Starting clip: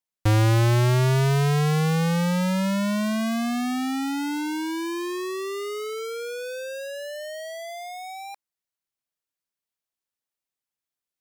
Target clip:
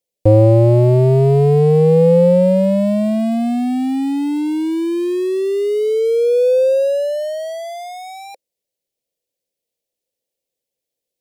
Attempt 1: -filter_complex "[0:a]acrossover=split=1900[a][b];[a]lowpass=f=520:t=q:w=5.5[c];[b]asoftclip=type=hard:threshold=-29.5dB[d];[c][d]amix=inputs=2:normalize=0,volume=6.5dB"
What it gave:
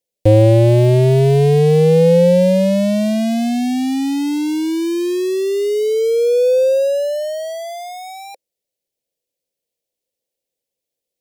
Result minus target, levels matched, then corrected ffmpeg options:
hard clip: distortion -7 dB
-filter_complex "[0:a]acrossover=split=1900[a][b];[a]lowpass=f=520:t=q:w=5.5[c];[b]asoftclip=type=hard:threshold=-41dB[d];[c][d]amix=inputs=2:normalize=0,volume=6.5dB"

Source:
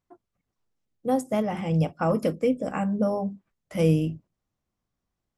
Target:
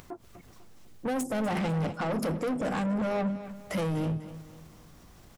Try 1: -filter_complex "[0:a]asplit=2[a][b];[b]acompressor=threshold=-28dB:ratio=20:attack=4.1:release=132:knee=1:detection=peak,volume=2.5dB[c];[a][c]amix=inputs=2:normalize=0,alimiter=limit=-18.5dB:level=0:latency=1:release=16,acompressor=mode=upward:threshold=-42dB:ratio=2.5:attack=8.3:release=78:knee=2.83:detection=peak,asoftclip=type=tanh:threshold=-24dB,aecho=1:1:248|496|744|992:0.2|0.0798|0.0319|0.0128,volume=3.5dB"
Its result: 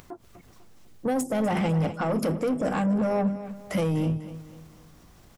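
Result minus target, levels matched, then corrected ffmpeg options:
soft clip: distortion -6 dB
-filter_complex "[0:a]asplit=2[a][b];[b]acompressor=threshold=-28dB:ratio=20:attack=4.1:release=132:knee=1:detection=peak,volume=2.5dB[c];[a][c]amix=inputs=2:normalize=0,alimiter=limit=-18.5dB:level=0:latency=1:release=16,acompressor=mode=upward:threshold=-42dB:ratio=2.5:attack=8.3:release=78:knee=2.83:detection=peak,asoftclip=type=tanh:threshold=-30.5dB,aecho=1:1:248|496|744|992:0.2|0.0798|0.0319|0.0128,volume=3.5dB"

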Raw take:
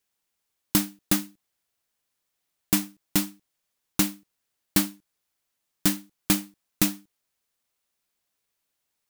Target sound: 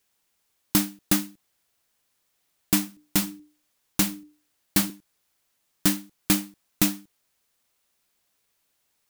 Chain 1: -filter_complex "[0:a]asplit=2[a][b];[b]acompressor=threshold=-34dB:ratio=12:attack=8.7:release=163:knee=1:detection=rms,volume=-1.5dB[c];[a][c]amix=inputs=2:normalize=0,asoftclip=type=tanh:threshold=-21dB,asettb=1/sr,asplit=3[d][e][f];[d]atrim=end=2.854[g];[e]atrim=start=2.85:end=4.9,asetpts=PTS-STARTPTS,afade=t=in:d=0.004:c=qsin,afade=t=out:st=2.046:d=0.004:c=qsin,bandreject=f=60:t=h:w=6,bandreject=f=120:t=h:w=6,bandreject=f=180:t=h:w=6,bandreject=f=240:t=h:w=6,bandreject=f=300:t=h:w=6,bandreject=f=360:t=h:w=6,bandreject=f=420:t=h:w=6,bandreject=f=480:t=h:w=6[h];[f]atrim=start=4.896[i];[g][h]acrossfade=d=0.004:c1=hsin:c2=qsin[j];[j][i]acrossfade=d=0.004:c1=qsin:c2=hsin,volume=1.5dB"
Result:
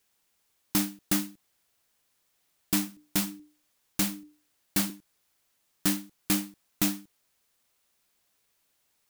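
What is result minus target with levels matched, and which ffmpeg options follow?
soft clip: distortion +10 dB
-filter_complex "[0:a]asplit=2[a][b];[b]acompressor=threshold=-34dB:ratio=12:attack=8.7:release=163:knee=1:detection=rms,volume=-1.5dB[c];[a][c]amix=inputs=2:normalize=0,asoftclip=type=tanh:threshold=-10.5dB,asettb=1/sr,asplit=3[d][e][f];[d]atrim=end=2.854[g];[e]atrim=start=2.85:end=4.9,asetpts=PTS-STARTPTS,afade=t=in:d=0.004:c=qsin,afade=t=out:st=2.046:d=0.004:c=qsin,bandreject=f=60:t=h:w=6,bandreject=f=120:t=h:w=6,bandreject=f=180:t=h:w=6,bandreject=f=240:t=h:w=6,bandreject=f=300:t=h:w=6,bandreject=f=360:t=h:w=6,bandreject=f=420:t=h:w=6,bandreject=f=480:t=h:w=6[h];[f]atrim=start=4.896[i];[g][h]acrossfade=d=0.004:c1=hsin:c2=qsin[j];[j][i]acrossfade=d=0.004:c1=qsin:c2=hsin,volume=1.5dB"

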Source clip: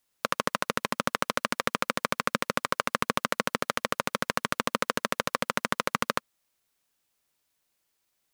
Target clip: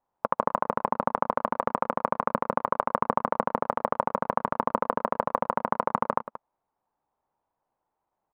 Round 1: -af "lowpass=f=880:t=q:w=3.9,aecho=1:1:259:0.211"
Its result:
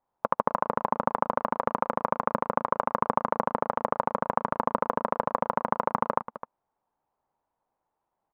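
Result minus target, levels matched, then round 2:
echo 80 ms late
-af "lowpass=f=880:t=q:w=3.9,aecho=1:1:179:0.211"

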